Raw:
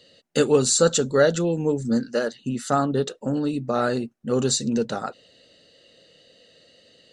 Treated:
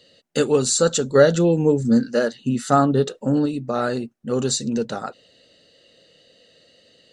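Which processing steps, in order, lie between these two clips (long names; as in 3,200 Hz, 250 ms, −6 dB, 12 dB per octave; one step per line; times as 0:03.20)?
0:01.15–0:03.46: harmonic and percussive parts rebalanced harmonic +6 dB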